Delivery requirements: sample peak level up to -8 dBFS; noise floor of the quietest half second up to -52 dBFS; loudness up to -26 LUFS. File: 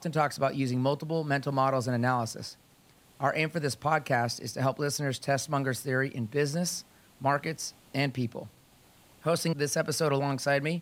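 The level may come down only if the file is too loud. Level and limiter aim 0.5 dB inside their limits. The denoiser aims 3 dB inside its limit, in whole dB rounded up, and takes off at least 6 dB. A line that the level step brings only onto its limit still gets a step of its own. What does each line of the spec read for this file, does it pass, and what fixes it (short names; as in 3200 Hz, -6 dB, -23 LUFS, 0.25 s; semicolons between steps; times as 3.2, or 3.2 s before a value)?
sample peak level -11.0 dBFS: OK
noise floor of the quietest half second -60 dBFS: OK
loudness -29.5 LUFS: OK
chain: none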